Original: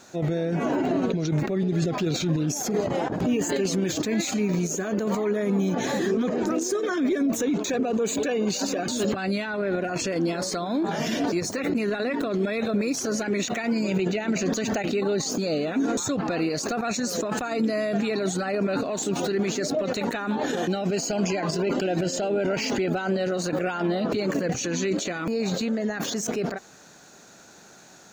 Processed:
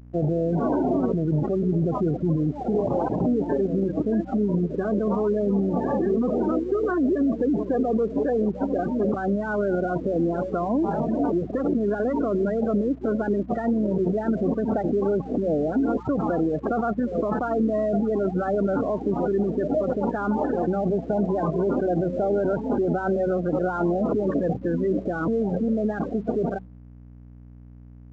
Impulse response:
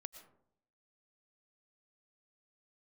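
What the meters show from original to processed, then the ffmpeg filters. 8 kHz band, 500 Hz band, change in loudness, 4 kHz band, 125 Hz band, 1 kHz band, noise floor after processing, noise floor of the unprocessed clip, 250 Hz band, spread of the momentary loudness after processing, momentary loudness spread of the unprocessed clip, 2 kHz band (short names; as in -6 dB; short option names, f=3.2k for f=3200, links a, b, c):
under -30 dB, +2.5 dB, +1.5 dB, under -25 dB, +2.0 dB, +2.5 dB, -44 dBFS, -50 dBFS, +2.0 dB, 2 LU, 2 LU, -6.0 dB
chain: -af "lowpass=f=1.4k:w=0.5412,lowpass=f=1.4k:w=1.3066,afftfilt=real='re*gte(hypot(re,im),0.0355)':imag='im*gte(hypot(re,im),0.0355)':win_size=1024:overlap=0.75,highpass=f=44:p=1,bandreject=f=94.03:t=h:w=4,bandreject=f=188.06:t=h:w=4,acompressor=threshold=-29dB:ratio=2,aeval=exprs='val(0)+0.00398*(sin(2*PI*60*n/s)+sin(2*PI*2*60*n/s)/2+sin(2*PI*3*60*n/s)/3+sin(2*PI*4*60*n/s)/4+sin(2*PI*5*60*n/s)/5)':c=same,acontrast=66,aresample=16000,aeval=exprs='sgn(val(0))*max(abs(val(0))-0.002,0)':c=same,aresample=44100"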